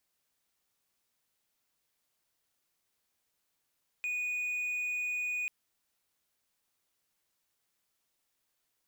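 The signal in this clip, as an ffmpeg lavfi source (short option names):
-f lavfi -i "aevalsrc='0.0335*(1-4*abs(mod(2470*t+0.25,1)-0.5))':d=1.44:s=44100"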